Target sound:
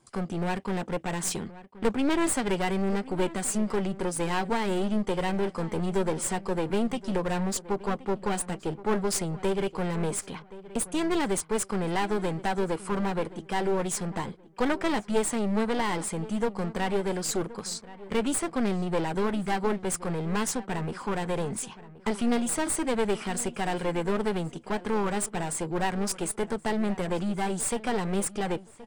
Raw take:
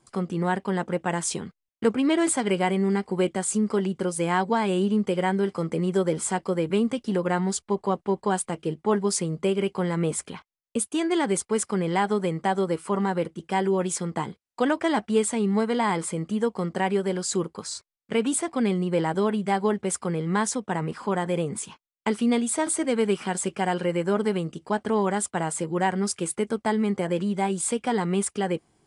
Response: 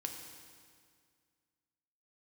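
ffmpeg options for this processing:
-filter_complex "[0:a]aeval=exprs='clip(val(0),-1,0.0316)':c=same,asplit=2[s0][s1];[s1]adelay=1074,lowpass=f=2600:p=1,volume=0.141,asplit=2[s2][s3];[s3]adelay=1074,lowpass=f=2600:p=1,volume=0.3,asplit=2[s4][s5];[s5]adelay=1074,lowpass=f=2600:p=1,volume=0.3[s6];[s0][s2][s4][s6]amix=inputs=4:normalize=0"

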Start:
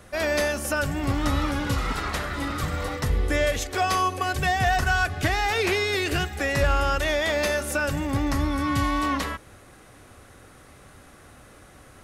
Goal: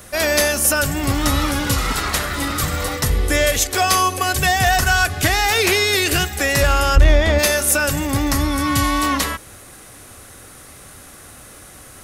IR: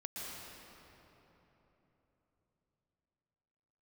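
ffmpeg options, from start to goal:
-filter_complex "[0:a]asplit=3[s0][s1][s2];[s0]afade=t=out:st=6.95:d=0.02[s3];[s1]aemphasis=mode=reproduction:type=riaa,afade=t=in:st=6.95:d=0.02,afade=t=out:st=7.38:d=0.02[s4];[s2]afade=t=in:st=7.38:d=0.02[s5];[s3][s4][s5]amix=inputs=3:normalize=0,acontrast=31,crystalizer=i=2.5:c=0"

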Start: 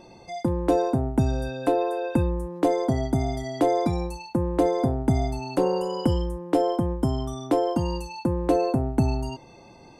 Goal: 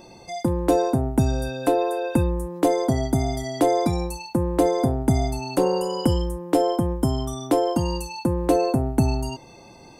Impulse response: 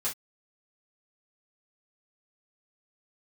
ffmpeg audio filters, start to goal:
-af "highshelf=f=6700:g=12,volume=1.26"

